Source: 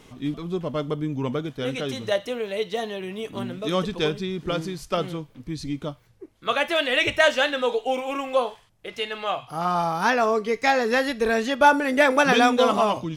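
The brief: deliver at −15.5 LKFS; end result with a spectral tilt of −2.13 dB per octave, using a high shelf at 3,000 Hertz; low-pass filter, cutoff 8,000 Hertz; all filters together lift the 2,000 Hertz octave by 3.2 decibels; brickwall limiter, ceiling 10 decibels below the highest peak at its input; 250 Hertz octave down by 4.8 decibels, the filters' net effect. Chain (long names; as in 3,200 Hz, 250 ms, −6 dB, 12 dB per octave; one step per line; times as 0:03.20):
low-pass filter 8,000 Hz
parametric band 250 Hz −6 dB
parametric band 2,000 Hz +6 dB
high-shelf EQ 3,000 Hz −5 dB
level +9.5 dB
brickwall limiter −2 dBFS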